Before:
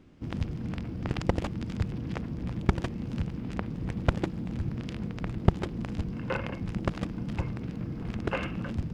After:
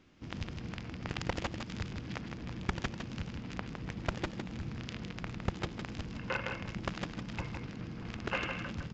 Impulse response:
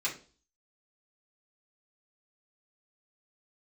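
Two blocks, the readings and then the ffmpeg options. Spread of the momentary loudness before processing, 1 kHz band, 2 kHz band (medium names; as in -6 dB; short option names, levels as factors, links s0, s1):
6 LU, -3.0 dB, +0.5 dB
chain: -af "tiltshelf=f=820:g=-6,aresample=16000,asoftclip=type=tanh:threshold=0.178,aresample=44100,aecho=1:1:159:0.501,volume=0.668"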